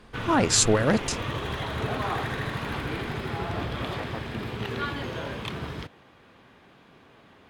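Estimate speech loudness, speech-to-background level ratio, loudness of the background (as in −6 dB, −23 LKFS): −22.5 LKFS, 9.5 dB, −32.0 LKFS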